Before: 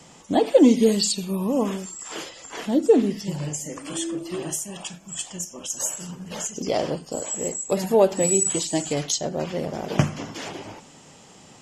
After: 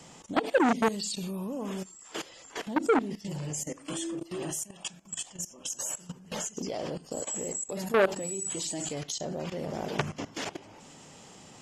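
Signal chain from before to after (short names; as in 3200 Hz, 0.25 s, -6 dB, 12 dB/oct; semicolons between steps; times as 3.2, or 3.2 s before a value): level quantiser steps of 17 dB; core saturation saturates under 1800 Hz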